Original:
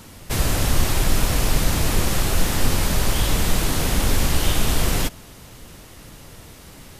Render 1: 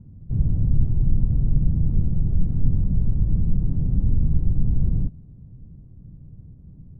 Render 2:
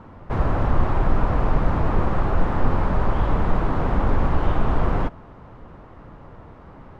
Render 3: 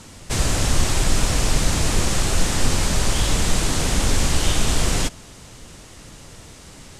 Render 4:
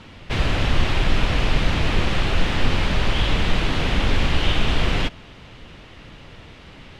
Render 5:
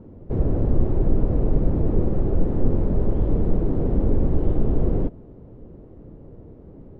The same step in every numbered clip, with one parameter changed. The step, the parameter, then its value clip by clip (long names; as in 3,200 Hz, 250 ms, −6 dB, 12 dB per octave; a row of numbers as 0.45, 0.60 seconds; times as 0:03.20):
low-pass with resonance, frequency: 150, 1,100, 7,900, 3,000, 420 Hertz